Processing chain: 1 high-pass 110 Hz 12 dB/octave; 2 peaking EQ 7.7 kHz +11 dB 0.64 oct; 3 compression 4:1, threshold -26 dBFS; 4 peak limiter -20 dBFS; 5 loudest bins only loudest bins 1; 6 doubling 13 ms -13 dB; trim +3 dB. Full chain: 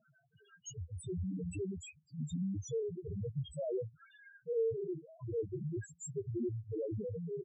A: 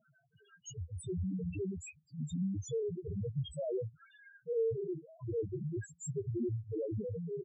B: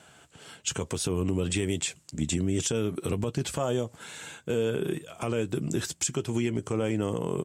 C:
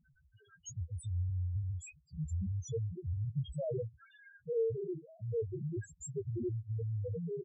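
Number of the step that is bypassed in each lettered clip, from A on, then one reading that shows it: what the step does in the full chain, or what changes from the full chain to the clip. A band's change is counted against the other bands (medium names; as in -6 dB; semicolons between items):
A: 3, loudness change +1.5 LU; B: 5, 4 kHz band +12.0 dB; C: 1, 125 Hz band +6.0 dB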